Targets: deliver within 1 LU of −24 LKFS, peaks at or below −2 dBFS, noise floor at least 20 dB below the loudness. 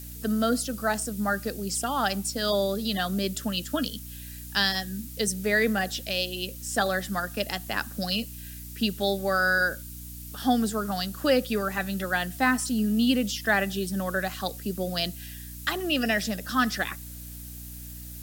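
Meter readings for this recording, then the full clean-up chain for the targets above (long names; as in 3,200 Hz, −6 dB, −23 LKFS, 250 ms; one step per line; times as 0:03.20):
mains hum 60 Hz; hum harmonics up to 300 Hz; level of the hum −40 dBFS; background noise floor −41 dBFS; target noise floor −47 dBFS; integrated loudness −27.0 LKFS; sample peak −8.5 dBFS; target loudness −24.0 LKFS
→ hum removal 60 Hz, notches 5
noise reduction from a noise print 6 dB
level +3 dB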